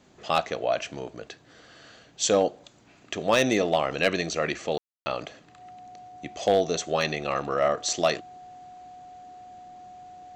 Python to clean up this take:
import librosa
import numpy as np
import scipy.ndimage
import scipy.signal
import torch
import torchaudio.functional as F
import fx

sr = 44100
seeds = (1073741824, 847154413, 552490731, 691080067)

y = fx.fix_declip(x, sr, threshold_db=-12.5)
y = fx.notch(y, sr, hz=730.0, q=30.0)
y = fx.fix_ambience(y, sr, seeds[0], print_start_s=2.62, print_end_s=3.12, start_s=4.78, end_s=5.06)